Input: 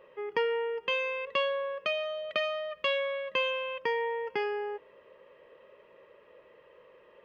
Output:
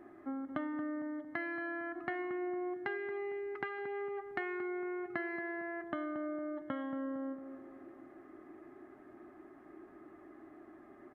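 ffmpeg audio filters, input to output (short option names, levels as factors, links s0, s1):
-filter_complex "[0:a]acompressor=threshold=0.01:ratio=4,asetrate=28665,aresample=44100,asplit=2[s0][s1];[s1]adelay=228,lowpass=f=1200:p=1,volume=0.376,asplit=2[s2][s3];[s3]adelay=228,lowpass=f=1200:p=1,volume=0.51,asplit=2[s4][s5];[s5]adelay=228,lowpass=f=1200:p=1,volume=0.51,asplit=2[s6][s7];[s7]adelay=228,lowpass=f=1200:p=1,volume=0.51,asplit=2[s8][s9];[s9]adelay=228,lowpass=f=1200:p=1,volume=0.51,asplit=2[s10][s11];[s11]adelay=228,lowpass=f=1200:p=1,volume=0.51[s12];[s2][s4][s6][s8][s10][s12]amix=inputs=6:normalize=0[s13];[s0][s13]amix=inputs=2:normalize=0,volume=1.19"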